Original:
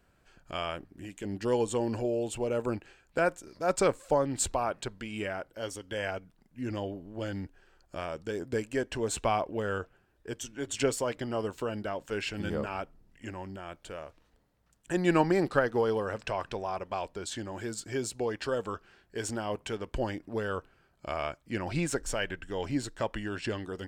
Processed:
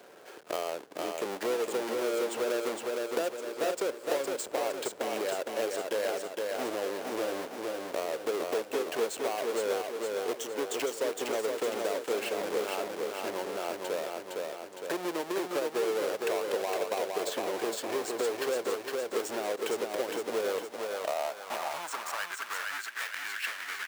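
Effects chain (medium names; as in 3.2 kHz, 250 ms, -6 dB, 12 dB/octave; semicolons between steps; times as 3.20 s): square wave that keeps the level; compression 10:1, threshold -33 dBFS, peak gain reduction 17.5 dB; feedback delay 461 ms, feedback 50%, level -4 dB; high-pass sweep 450 Hz -> 1.7 kHz, 20.49–23.01 s; three bands compressed up and down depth 40%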